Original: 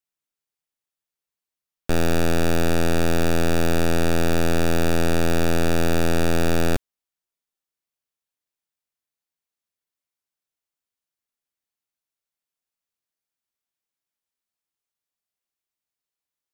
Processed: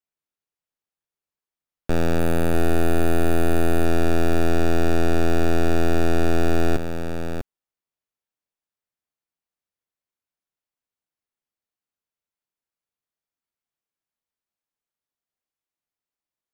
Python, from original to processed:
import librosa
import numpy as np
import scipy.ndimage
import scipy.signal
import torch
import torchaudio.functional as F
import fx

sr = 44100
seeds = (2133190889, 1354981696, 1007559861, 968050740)

p1 = fx.high_shelf(x, sr, hz=2500.0, db=-8.5)
p2 = fx.resample_bad(p1, sr, factor=4, down='filtered', up='hold', at=(2.19, 3.85))
y = p2 + fx.echo_single(p2, sr, ms=648, db=-7.5, dry=0)